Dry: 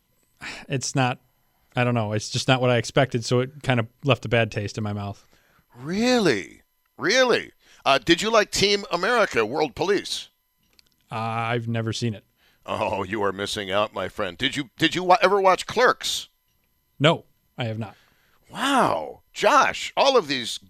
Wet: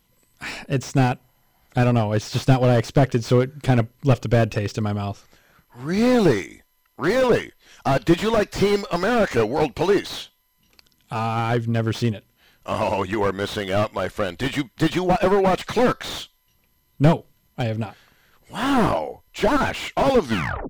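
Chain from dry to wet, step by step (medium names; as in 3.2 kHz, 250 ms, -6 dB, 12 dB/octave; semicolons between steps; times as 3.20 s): tape stop on the ending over 0.48 s; slew-rate limiter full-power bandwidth 72 Hz; trim +4 dB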